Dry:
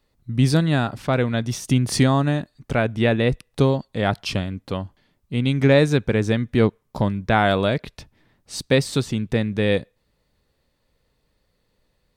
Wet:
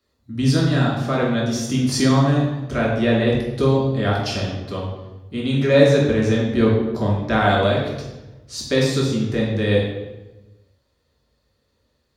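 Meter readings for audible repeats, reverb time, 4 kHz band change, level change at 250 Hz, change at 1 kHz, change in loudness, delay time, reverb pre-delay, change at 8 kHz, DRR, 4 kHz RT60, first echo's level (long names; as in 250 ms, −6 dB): no echo audible, 1.1 s, +2.0 dB, +2.0 dB, +1.0 dB, +2.0 dB, no echo audible, 3 ms, +2.0 dB, −4.5 dB, 0.75 s, no echo audible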